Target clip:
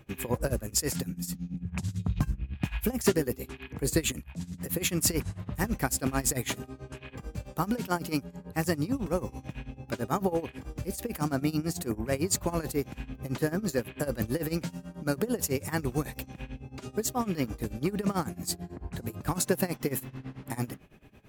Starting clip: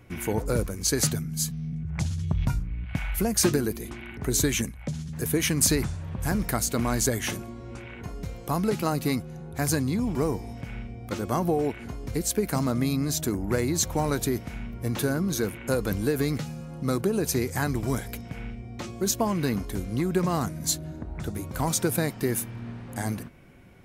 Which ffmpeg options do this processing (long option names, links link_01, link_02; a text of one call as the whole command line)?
ffmpeg -i in.wav -af "tremolo=f=8.1:d=0.88,asetrate=49392,aresample=44100" out.wav